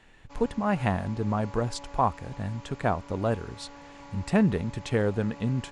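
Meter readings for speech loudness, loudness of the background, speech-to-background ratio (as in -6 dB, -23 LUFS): -28.5 LUFS, -47.0 LUFS, 18.5 dB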